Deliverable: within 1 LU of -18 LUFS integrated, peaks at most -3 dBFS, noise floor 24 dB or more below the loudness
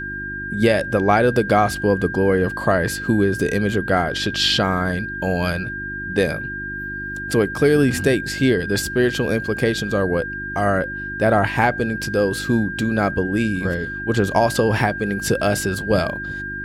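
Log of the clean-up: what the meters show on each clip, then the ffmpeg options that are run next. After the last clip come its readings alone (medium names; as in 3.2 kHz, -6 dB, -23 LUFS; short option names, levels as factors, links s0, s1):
hum 50 Hz; highest harmonic 350 Hz; hum level -33 dBFS; steady tone 1.6 kHz; tone level -27 dBFS; loudness -20.0 LUFS; peak level -3.0 dBFS; loudness target -18.0 LUFS
-> -af "bandreject=f=50:t=h:w=4,bandreject=f=100:t=h:w=4,bandreject=f=150:t=h:w=4,bandreject=f=200:t=h:w=4,bandreject=f=250:t=h:w=4,bandreject=f=300:t=h:w=4,bandreject=f=350:t=h:w=4"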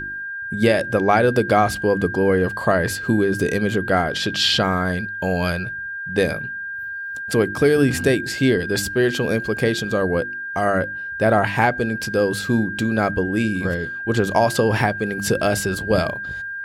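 hum not found; steady tone 1.6 kHz; tone level -27 dBFS
-> -af "bandreject=f=1600:w=30"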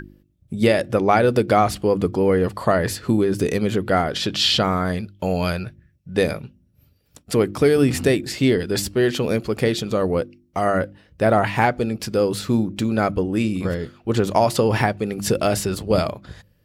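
steady tone not found; loudness -20.5 LUFS; peak level -3.0 dBFS; loudness target -18.0 LUFS
-> -af "volume=1.33,alimiter=limit=0.708:level=0:latency=1"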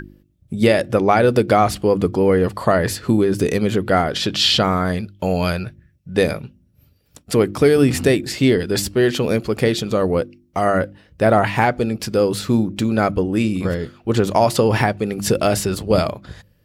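loudness -18.5 LUFS; peak level -3.0 dBFS; noise floor -59 dBFS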